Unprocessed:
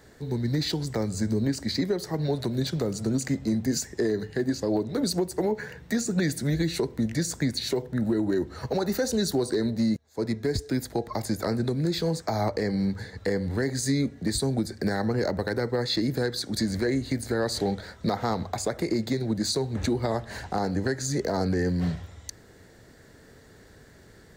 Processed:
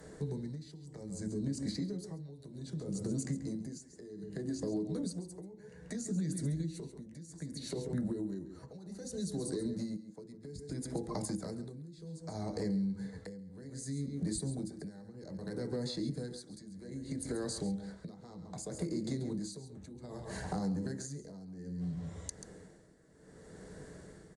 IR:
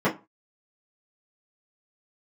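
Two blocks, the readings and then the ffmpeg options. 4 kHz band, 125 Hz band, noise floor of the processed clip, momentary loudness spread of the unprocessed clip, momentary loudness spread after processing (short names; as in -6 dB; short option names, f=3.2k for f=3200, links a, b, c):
-16.5 dB, -10.5 dB, -56 dBFS, 4 LU, 14 LU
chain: -filter_complex "[0:a]aresample=22050,aresample=44100,aecho=1:1:136:0.266,asplit=2[a][b];[1:a]atrim=start_sample=2205[c];[b][c]afir=irnorm=-1:irlink=0,volume=-19.5dB[d];[a][d]amix=inputs=2:normalize=0,acrossover=split=270|3000[e][f][g];[f]acompressor=threshold=-36dB:ratio=3[h];[e][h][g]amix=inputs=3:normalize=0,aemphasis=mode=production:type=cd,acompressor=threshold=-32dB:ratio=6,equalizer=f=3.7k:w=0.5:g=-8.5,tremolo=f=0.63:d=0.83"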